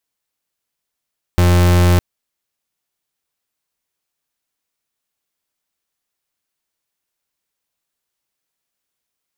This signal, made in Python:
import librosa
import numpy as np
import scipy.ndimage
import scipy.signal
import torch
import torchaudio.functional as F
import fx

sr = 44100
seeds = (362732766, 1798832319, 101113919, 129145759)

y = fx.pulse(sr, length_s=0.61, hz=88.3, level_db=-11.0, duty_pct=37)